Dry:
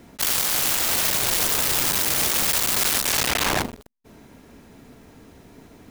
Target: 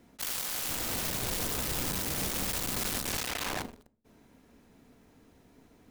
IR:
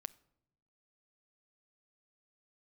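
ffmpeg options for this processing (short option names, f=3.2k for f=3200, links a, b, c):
-filter_complex "[0:a]asettb=1/sr,asplit=3[a][b][c];[a]atrim=end=0.694[d];[b]atrim=start=0.69:end=3.17,asetpts=PTS-STARTPTS,afade=t=in:d=0.004:c=qsin,afade=t=out:st=2.476:d=0.004:c=qsin,lowshelf=f=430:g=11.5[e];[c]atrim=start=3.166[f];[d][e]acrossfade=d=0.004:c1=hsin:c2=qsin[g];[g][f]acrossfade=d=0.004:c1=qsin:c2=hsin[h];[1:a]atrim=start_sample=2205,asetrate=74970,aresample=44100[i];[h][i]afir=irnorm=-1:irlink=0,volume=-3.5dB"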